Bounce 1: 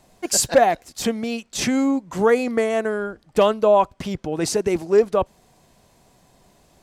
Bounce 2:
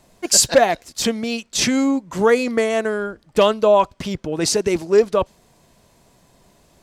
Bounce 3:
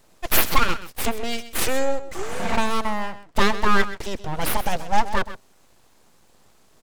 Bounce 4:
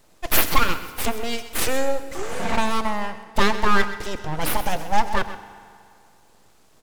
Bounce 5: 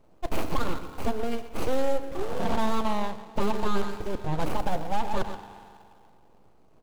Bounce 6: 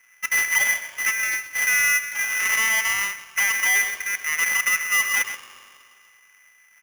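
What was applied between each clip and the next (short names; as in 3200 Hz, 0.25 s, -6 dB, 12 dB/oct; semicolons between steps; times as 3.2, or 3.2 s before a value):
notch 760 Hz, Q 12; dynamic EQ 4600 Hz, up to +6 dB, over -41 dBFS, Q 0.72; gain +1.5 dB
spectral repair 2.18–2.54, 290–8000 Hz both; full-wave rectifier; echo 0.129 s -14 dB; gain -1 dB
FDN reverb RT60 2.4 s, low-frequency decay 0.85×, high-frequency decay 0.75×, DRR 12 dB
median filter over 25 samples; limiter -14.5 dBFS, peak gain reduction 9 dB
polarity switched at an audio rate 2000 Hz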